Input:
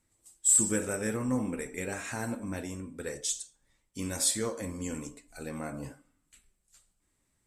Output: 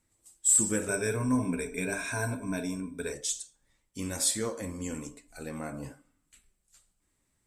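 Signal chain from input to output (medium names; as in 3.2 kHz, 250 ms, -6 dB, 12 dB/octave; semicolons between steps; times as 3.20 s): 0.88–3.13 s: rippled EQ curve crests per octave 1.6, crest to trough 15 dB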